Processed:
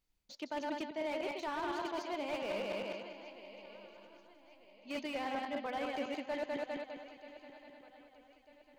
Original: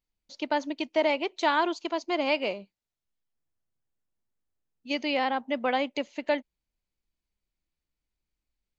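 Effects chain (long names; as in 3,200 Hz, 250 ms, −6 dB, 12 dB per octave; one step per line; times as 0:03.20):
feedback delay that plays each chunk backwards 101 ms, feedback 59%, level −4 dB
reversed playback
downward compressor 6 to 1, threshold −39 dBFS, peak gain reduction 19 dB
reversed playback
feedback echo with a long and a short gap by turns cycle 1,246 ms, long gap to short 3 to 1, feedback 34%, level −16 dB
slew-rate limiting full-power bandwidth 15 Hz
level +3 dB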